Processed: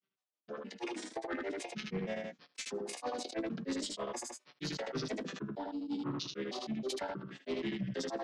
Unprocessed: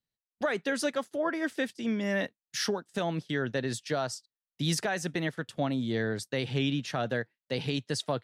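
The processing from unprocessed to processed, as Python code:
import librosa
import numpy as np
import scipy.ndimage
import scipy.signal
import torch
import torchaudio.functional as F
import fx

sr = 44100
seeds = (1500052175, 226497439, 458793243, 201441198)

y = fx.chord_vocoder(x, sr, chord='minor triad', root=53)
y = scipy.signal.sosfilt(scipy.signal.butter(4, 290.0, 'highpass', fs=sr, output='sos'), y)
y = fx.high_shelf(y, sr, hz=2900.0, db=11.5)
y = fx.over_compress(y, sr, threshold_db=-39.0, ratio=-1.0)
y = fx.granulator(y, sr, seeds[0], grain_ms=100.0, per_s=6.3, spray_ms=94.0, spread_st=7)
y = 10.0 ** (-37.5 / 20.0) * np.tanh(y / 10.0 ** (-37.5 / 20.0))
y = fx.air_absorb(y, sr, metres=75.0)
y = fx.doubler(y, sr, ms=15.0, db=-14)
y = fx.echo_feedback(y, sr, ms=78, feedback_pct=15, wet_db=-18.5)
y = fx.sustainer(y, sr, db_per_s=38.0)
y = y * 10.0 ** (7.0 / 20.0)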